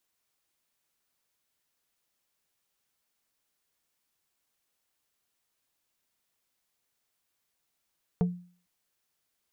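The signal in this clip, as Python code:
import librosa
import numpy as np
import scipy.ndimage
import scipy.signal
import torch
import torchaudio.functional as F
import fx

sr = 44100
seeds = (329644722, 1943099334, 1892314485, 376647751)

y = fx.strike_wood(sr, length_s=0.45, level_db=-19.5, body='plate', hz=177.0, decay_s=0.44, tilt_db=7.0, modes=5)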